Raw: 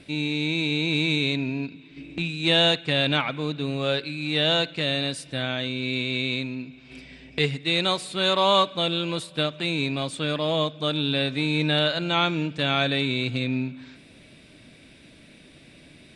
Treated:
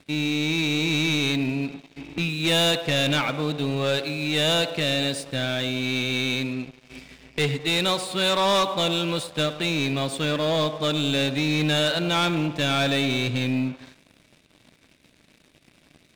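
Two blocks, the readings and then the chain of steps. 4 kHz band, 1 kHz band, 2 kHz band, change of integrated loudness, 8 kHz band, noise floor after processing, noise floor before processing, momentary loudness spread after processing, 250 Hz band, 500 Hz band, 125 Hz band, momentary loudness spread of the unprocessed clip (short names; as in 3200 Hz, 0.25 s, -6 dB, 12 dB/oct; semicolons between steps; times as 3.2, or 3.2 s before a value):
0.0 dB, 0.0 dB, +1.0 dB, +1.0 dB, +8.5 dB, -60 dBFS, -51 dBFS, 6 LU, +2.0 dB, +1.0 dB, +1.5 dB, 9 LU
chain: narrowing echo 0.105 s, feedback 68%, band-pass 620 Hz, level -12 dB; sample leveller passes 3; gain -8 dB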